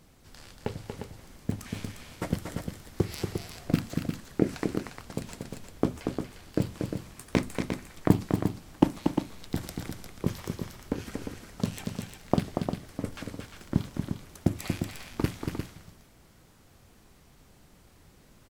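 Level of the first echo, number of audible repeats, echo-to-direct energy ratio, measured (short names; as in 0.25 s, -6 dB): -6.0 dB, 2, -3.5 dB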